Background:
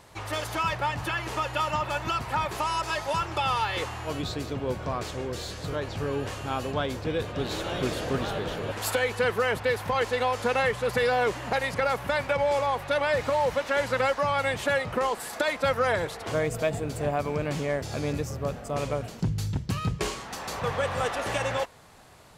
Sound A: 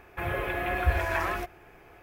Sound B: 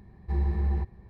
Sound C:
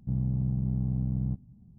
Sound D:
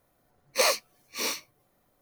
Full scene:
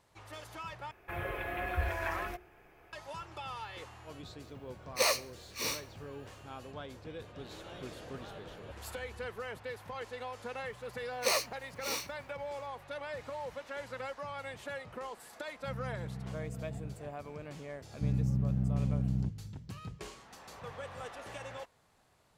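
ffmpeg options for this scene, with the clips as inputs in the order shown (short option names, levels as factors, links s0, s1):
-filter_complex "[4:a]asplit=2[s0][s1];[3:a]asplit=2[s2][s3];[0:a]volume=0.158[s4];[1:a]bandreject=f=60:t=h:w=6,bandreject=f=120:t=h:w=6,bandreject=f=180:t=h:w=6,bandreject=f=240:t=h:w=6,bandreject=f=300:t=h:w=6,bandreject=f=360:t=h:w=6,bandreject=f=420:t=h:w=6[s5];[s0]aecho=1:1:69|138|207:0.0841|0.0404|0.0194[s6];[2:a]acompressor=threshold=0.0141:ratio=6:attack=3.2:release=140:knee=1:detection=peak[s7];[s4]asplit=2[s8][s9];[s8]atrim=end=0.914[s10];[s5]atrim=end=2.02,asetpts=PTS-STARTPTS,volume=0.447[s11];[s9]atrim=start=2.926[s12];[s6]atrim=end=2.01,asetpts=PTS-STARTPTS,volume=0.562,afade=t=in:d=0.004:c=hsin,afade=t=out:st=2.006:d=0.004:c=hsin,adelay=194481S[s13];[s7]atrim=end=1.09,asetpts=PTS-STARTPTS,volume=0.224,afade=t=in:d=0.004:c=hsin,afade=t=out:st=1.086:d=0.004:c=hsin,adelay=371322S[s14];[s1]atrim=end=2.01,asetpts=PTS-STARTPTS,volume=0.473,afade=t=in:d=0.004:c=hsin,afade=t=out:st=2.006:d=0.004:c=hsin,adelay=10670[s15];[s2]atrim=end=1.78,asetpts=PTS-STARTPTS,volume=0.224,afade=t=in:d=0.004:c=hsin,afade=t=out:st=1.776:d=0.004:c=hsin,adelay=15590[s16];[s3]atrim=end=1.78,asetpts=PTS-STARTPTS,volume=0.794,afade=t=in:d=0.004:c=hsin,afade=t=out:st=1.776:d=0.004:c=hsin,adelay=17940[s17];[s10][s11]acrossfade=d=0.004:c1=hsin:c2=hsin[s18];[s18][s12]acrossfade=d=0.004:c1=hsin:c2=hsin[s19];[s19][s13][s14][s15][s16][s17]amix=inputs=6:normalize=0"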